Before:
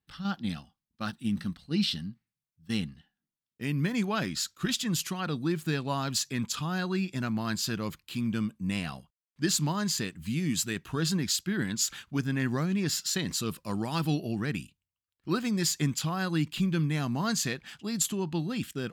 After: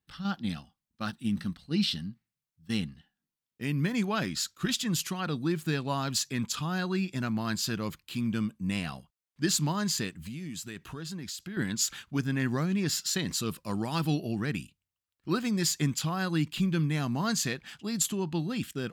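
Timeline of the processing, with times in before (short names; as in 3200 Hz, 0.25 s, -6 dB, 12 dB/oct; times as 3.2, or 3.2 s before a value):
10.22–11.57 compressor 4:1, threshold -37 dBFS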